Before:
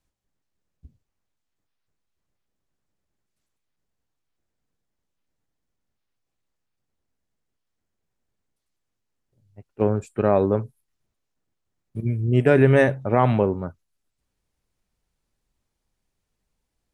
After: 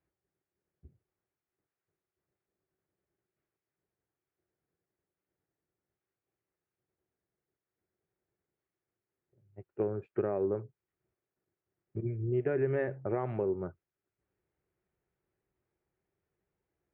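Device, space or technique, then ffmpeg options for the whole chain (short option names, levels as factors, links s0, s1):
bass amplifier: -af "acompressor=threshold=0.0355:ratio=4,highpass=88,equalizer=f=240:t=q:w=4:g=-8,equalizer=f=370:t=q:w=4:g=10,equalizer=f=1000:t=q:w=4:g=-4,lowpass=f=2200:w=0.5412,lowpass=f=2200:w=1.3066,volume=0.708"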